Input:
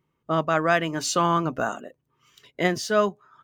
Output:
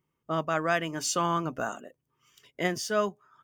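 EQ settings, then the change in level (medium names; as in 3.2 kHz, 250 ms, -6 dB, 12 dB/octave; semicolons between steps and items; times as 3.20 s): treble shelf 4.2 kHz +6 dB; band-stop 4 kHz, Q 6.4; -6.0 dB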